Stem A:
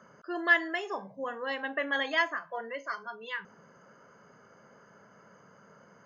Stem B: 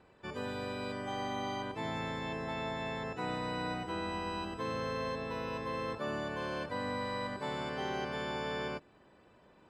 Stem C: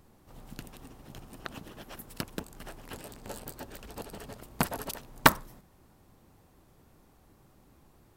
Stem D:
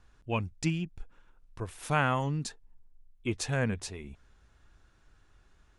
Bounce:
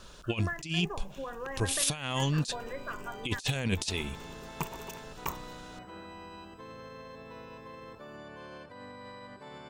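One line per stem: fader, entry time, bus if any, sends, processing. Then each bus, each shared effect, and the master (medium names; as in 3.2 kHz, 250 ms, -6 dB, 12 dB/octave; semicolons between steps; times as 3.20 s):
-3.0 dB, 0.00 s, no send, steep low-pass 1.9 kHz; compression, threshold -37 dBFS, peak gain reduction 17 dB
-12.0 dB, 2.00 s, no send, peak limiter -29.5 dBFS, peak gain reduction 5 dB
-13.5 dB, 0.00 s, no send, rippled EQ curve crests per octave 0.74, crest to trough 14 dB
+2.5 dB, 0.00 s, no send, resonant high shelf 2.3 kHz +13 dB, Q 1.5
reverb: none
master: compressor with a negative ratio -29 dBFS, ratio -0.5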